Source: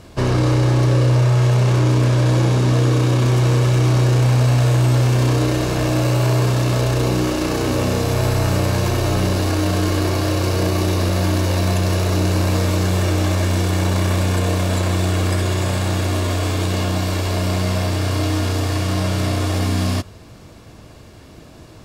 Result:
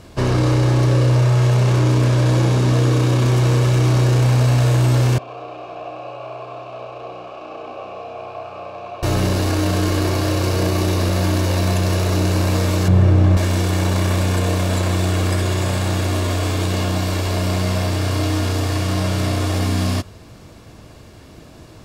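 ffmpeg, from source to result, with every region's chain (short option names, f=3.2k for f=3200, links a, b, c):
-filter_complex "[0:a]asettb=1/sr,asplit=3[a][b][c];[a]atrim=end=5.184[d];[b]atrim=start=5.18:end=9.03,asetpts=PTS-STARTPTS,afade=t=in:d=0.004:c=qsin,afade=t=out:st=3.846:d=0.004:c=qsin,acrossover=split=5500[e][f];[f]acompressor=threshold=-41dB:ratio=4:attack=1:release=60[g];[e][g]amix=inputs=2:normalize=0,asplit=3[h][i][j];[h]bandpass=f=730:t=q:w=8,volume=0dB[k];[i]bandpass=f=1.09k:t=q:w=8,volume=-6dB[l];[j]bandpass=f=2.44k:t=q:w=8,volume=-9dB[m];[k][l][m]amix=inputs=3:normalize=0,aecho=1:1:99:0.631,atrim=end_sample=169785[n];[c]atrim=start=9.026[o];[d][n]acrossfade=d=0.004:c1=hsin:c2=qsin[p];[p][o]acrossfade=d=0.004:c1=qsin:c2=hsin,asettb=1/sr,asplit=3[q][r][s];[q]atrim=end=12.884[t];[r]atrim=start=12.88:end=13.37,asetpts=PTS-STARTPTS,afade=t=in:d=0.004:c=qsin,afade=t=out:st=0.486:d=0.004:c=qsin,lowpass=f=1.3k:p=1,equalizer=f=130:w=1.4:g=12.5[u];[s]atrim=start=13.366[v];[t][u]acrossfade=d=0.004:c1=hsin:c2=qsin[w];[w][v]acrossfade=d=0.004:c1=qsin:c2=hsin"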